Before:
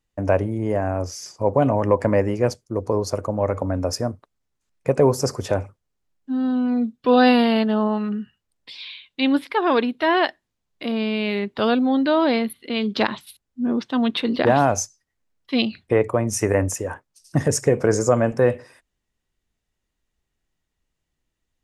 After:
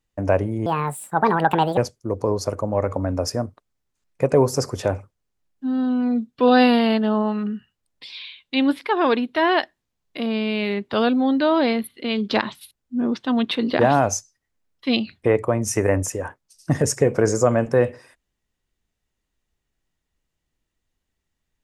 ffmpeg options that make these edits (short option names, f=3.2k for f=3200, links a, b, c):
-filter_complex "[0:a]asplit=3[a][b][c];[a]atrim=end=0.664[d];[b]atrim=start=0.66:end=2.43,asetpts=PTS-STARTPTS,asetrate=70119,aresample=44100,atrim=end_sample=49092,asetpts=PTS-STARTPTS[e];[c]atrim=start=2.426[f];[d][e]acrossfade=d=0.004:c1=hsin:c2=hsin[g];[g][f]acrossfade=d=0.004:c1=hsin:c2=hsin"